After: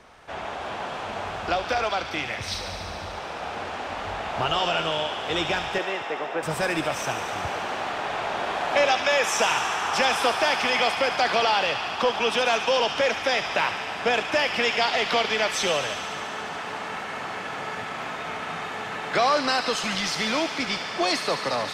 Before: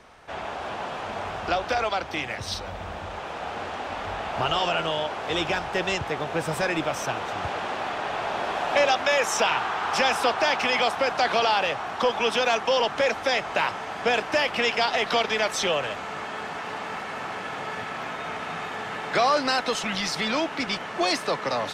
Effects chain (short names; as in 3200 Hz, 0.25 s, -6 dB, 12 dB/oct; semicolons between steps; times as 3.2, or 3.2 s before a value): 5.78–6.43 three-band isolator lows -23 dB, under 250 Hz, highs -23 dB, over 2600 Hz; thin delay 72 ms, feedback 84%, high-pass 1800 Hz, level -8 dB